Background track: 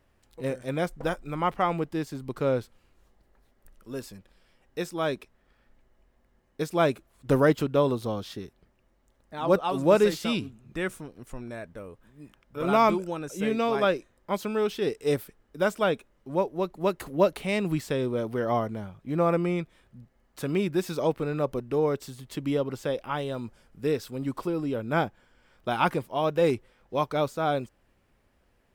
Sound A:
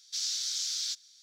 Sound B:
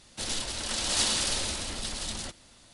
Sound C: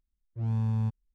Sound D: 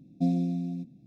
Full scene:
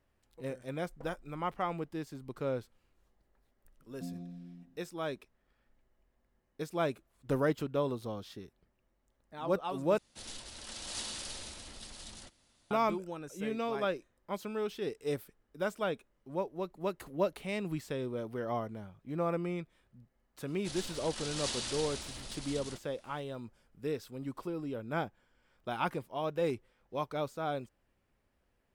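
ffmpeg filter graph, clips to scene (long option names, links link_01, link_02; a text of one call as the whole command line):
ffmpeg -i bed.wav -i cue0.wav -i cue1.wav -i cue2.wav -i cue3.wav -filter_complex "[2:a]asplit=2[link_01][link_02];[0:a]volume=-9dB[link_03];[4:a]asplit=2[link_04][link_05];[link_05]adelay=140,highpass=300,lowpass=3400,asoftclip=type=hard:threshold=-24.5dB,volume=-8dB[link_06];[link_04][link_06]amix=inputs=2:normalize=0[link_07];[link_02]acrossover=split=9500[link_08][link_09];[link_09]acompressor=threshold=-45dB:ratio=4:attack=1:release=60[link_10];[link_08][link_10]amix=inputs=2:normalize=0[link_11];[link_03]asplit=2[link_12][link_13];[link_12]atrim=end=9.984[link_14];[link_01]atrim=end=2.73,asetpts=PTS-STARTPTS,volume=-13.5dB[link_15];[link_13]atrim=start=12.706[link_16];[link_07]atrim=end=1.06,asetpts=PTS-STARTPTS,volume=-16.5dB,afade=type=in:duration=0.004:curve=hsin,afade=type=out:start_time=1.056:duration=0.004:curve=hsin,adelay=3800[link_17];[link_11]atrim=end=2.73,asetpts=PTS-STARTPTS,volume=-10dB,afade=type=in:duration=0.004:curve=hsin,afade=type=out:start_time=2.726:duration=0.004:curve=hsin,adelay=20470[link_18];[link_14][link_15]acrossfade=duration=0.004:curve1=hsin:curve2=hsin[link_19];[link_19][link_16]acrossfade=duration=0.004:curve1=hsin:curve2=hsin[link_20];[link_20][link_17][link_18]amix=inputs=3:normalize=0" out.wav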